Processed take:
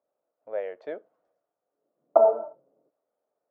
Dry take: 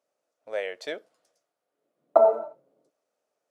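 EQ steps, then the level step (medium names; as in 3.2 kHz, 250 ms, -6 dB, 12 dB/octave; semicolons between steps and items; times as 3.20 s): low-pass 1 kHz 12 dB/octave; bass shelf 380 Hz -4 dB; +1.5 dB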